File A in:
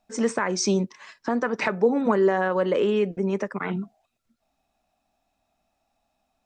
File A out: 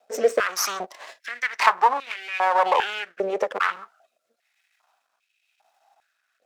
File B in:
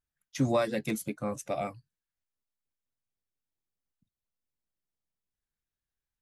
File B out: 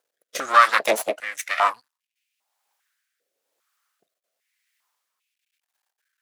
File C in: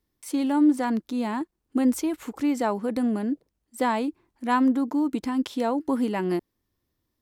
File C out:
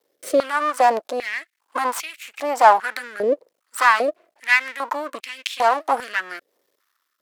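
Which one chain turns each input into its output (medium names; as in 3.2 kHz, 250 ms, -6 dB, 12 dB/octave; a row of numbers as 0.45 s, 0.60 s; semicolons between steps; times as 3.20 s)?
in parallel at -0.5 dB: compression, threshold -32 dBFS; on the sum: half-wave rectifier; rotary cabinet horn 1 Hz; step-sequenced high-pass 2.5 Hz 510–2500 Hz; peak normalisation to -2 dBFS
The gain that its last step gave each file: +5.0 dB, +14.0 dB, +10.0 dB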